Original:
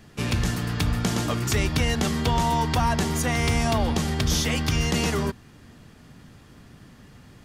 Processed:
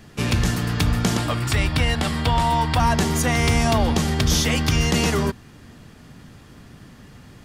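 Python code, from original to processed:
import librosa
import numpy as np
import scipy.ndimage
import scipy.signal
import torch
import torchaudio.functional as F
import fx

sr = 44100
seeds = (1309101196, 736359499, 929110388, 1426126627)

y = fx.graphic_eq_31(x, sr, hz=(200, 400, 6300, 12500), db=(-11, -10, -11, -9), at=(1.17, 2.8))
y = y * 10.0 ** (4.0 / 20.0)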